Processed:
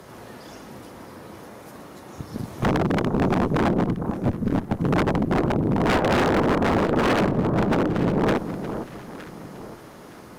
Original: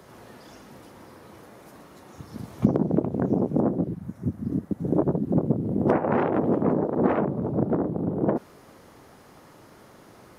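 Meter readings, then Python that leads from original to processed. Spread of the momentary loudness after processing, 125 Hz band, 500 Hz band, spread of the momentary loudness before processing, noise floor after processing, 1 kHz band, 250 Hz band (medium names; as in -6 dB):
21 LU, +3.5 dB, +2.5 dB, 8 LU, -43 dBFS, +6.5 dB, +2.0 dB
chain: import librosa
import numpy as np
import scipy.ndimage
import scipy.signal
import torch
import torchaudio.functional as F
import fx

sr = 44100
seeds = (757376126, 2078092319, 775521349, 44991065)

y = 10.0 ** (-21.0 / 20.0) * (np.abs((x / 10.0 ** (-21.0 / 20.0) + 3.0) % 4.0 - 2.0) - 1.0)
y = fx.cheby_harmonics(y, sr, harmonics=(2,), levels_db=(-10,), full_scale_db=-21.0)
y = fx.echo_alternate(y, sr, ms=457, hz=1200.0, feedback_pct=57, wet_db=-9)
y = y * librosa.db_to_amplitude(5.5)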